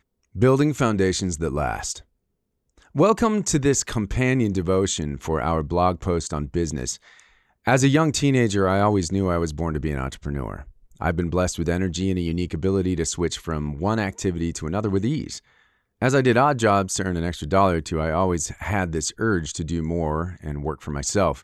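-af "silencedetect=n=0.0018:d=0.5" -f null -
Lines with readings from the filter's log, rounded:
silence_start: 2.03
silence_end: 2.70 | silence_duration: 0.67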